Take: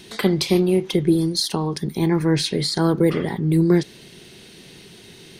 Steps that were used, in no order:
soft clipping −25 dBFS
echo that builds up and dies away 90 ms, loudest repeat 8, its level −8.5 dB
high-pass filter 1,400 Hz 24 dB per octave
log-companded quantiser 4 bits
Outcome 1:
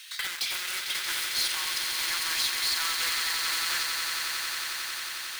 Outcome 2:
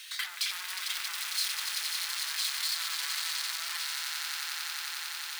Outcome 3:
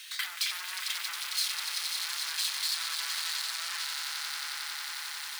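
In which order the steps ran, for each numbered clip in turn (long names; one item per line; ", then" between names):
log-companded quantiser, then high-pass filter, then soft clipping, then echo that builds up and dies away
log-companded quantiser, then echo that builds up and dies away, then soft clipping, then high-pass filter
echo that builds up and dies away, then soft clipping, then log-companded quantiser, then high-pass filter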